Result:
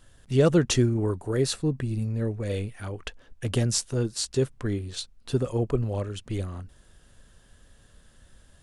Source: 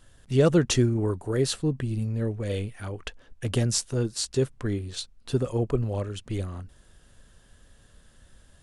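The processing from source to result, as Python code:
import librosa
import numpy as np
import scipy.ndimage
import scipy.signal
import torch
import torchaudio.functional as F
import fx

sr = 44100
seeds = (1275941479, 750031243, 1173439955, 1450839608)

y = fx.notch(x, sr, hz=3100.0, q=10.0, at=(1.43, 2.69))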